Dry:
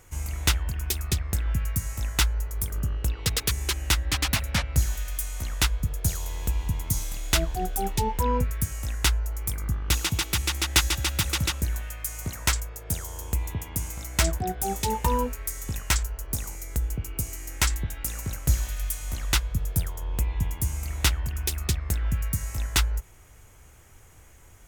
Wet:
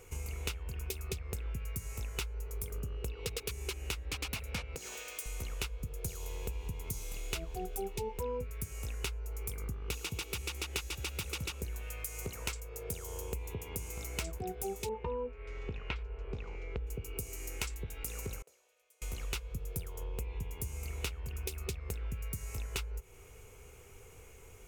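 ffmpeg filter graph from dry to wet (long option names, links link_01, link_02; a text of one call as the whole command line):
ffmpeg -i in.wav -filter_complex "[0:a]asettb=1/sr,asplit=3[link_01][link_02][link_03];[link_01]atrim=end=4.754[link_04];[link_02]atrim=start=4.75:end=5.26,asetpts=PTS-STARTPTS,afade=type=in:duration=0.004:curve=qsin,afade=type=out:start_time=0.506:duration=0.004:curve=qsin,equalizer=frequency=12000:width=2.1:gain=-12.5,acompressor=threshold=-23dB:ratio=4:attack=3.2:release=140:knee=1:detection=peak,highpass=300[link_05];[link_03]atrim=start=5.256[link_06];[link_04][link_05]acrossfade=duration=0.004:curve1=hsin:curve2=qsin[link_07];[link_07][link_06]acrossfade=duration=0.004:curve1=qsin:curve2=hsin,asettb=1/sr,asplit=3[link_08][link_09][link_10];[link_08]atrim=end=14.894[link_11];[link_09]atrim=start=14.89:end=16.87,asetpts=PTS-STARTPTS,afade=type=in:duration=0.004:curve=qsin,afade=type=out:start_time=1.976:duration=0.004:curve=qsin,lowpass=frequency=3300:width=0.5412,lowpass=frequency=3300:width=1.3066,adynamicequalizer=threshold=0.00708:dfrequency=2300:dqfactor=0.7:tfrequency=2300:tqfactor=0.7:attack=5:release=100:ratio=0.375:range=2.5:mode=cutabove:tftype=highshelf[link_12];[link_10]atrim=start=16.866[link_13];[link_11][link_12]acrossfade=duration=0.004:curve1=hsin:curve2=qsin[link_14];[link_14][link_13]acrossfade=duration=0.004:curve1=qsin:curve2=hsin,asettb=1/sr,asplit=3[link_15][link_16][link_17];[link_15]atrim=end=18.424[link_18];[link_16]atrim=start=18.42:end=19.02,asetpts=PTS-STARTPTS,afade=type=in:duration=0.004:curve=qsin,afade=type=out:start_time=0.596:duration=0.004:curve=qsin,bandpass=frequency=550:width_type=q:width=2.4,aderivative[link_19];[link_17]atrim=start=19.016[link_20];[link_18][link_19]acrossfade=duration=0.004:curve1=hsin:curve2=qsin[link_21];[link_21][link_20]acrossfade=duration=0.004:curve1=qsin:curve2=hsin,superequalizer=7b=3.55:11b=0.631:12b=1.78,acompressor=threshold=-34dB:ratio=4,volume=-3dB" out.wav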